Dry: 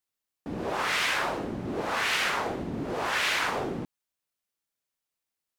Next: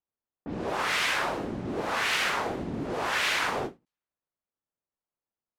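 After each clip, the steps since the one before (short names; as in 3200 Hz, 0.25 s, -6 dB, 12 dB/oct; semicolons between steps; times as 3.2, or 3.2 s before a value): low-pass opened by the level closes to 1100 Hz, open at -28 dBFS; ending taper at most 290 dB/s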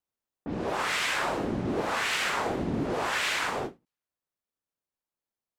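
vocal rider 0.5 s; dynamic EQ 7700 Hz, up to +5 dB, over -56 dBFS, Q 3.8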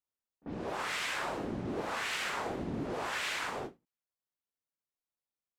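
reverse echo 42 ms -24 dB; gain -7 dB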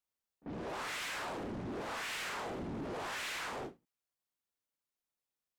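soft clip -38 dBFS, distortion -10 dB; gain +1 dB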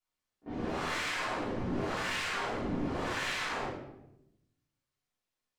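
flange 0.79 Hz, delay 9.2 ms, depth 3.5 ms, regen +72%; reverb RT60 0.85 s, pre-delay 3 ms, DRR -9.5 dB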